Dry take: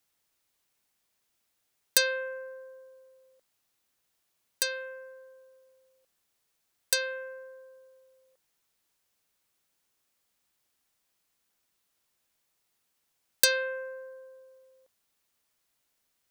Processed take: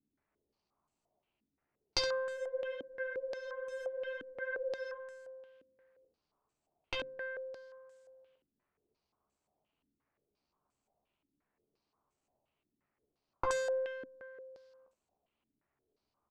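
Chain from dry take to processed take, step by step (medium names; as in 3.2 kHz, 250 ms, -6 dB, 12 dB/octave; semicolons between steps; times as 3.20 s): median filter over 25 samples; band-stop 510 Hz, Q 15; early reflections 14 ms -6.5 dB, 69 ms -9 dB; spectral freeze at 2.39 s, 2.59 s; step-sequenced low-pass 5.7 Hz 270–7800 Hz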